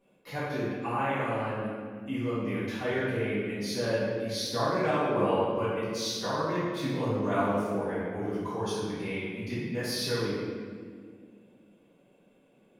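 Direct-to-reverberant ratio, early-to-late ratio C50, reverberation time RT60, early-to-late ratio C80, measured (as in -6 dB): -13.0 dB, -2.5 dB, 1.9 s, 0.5 dB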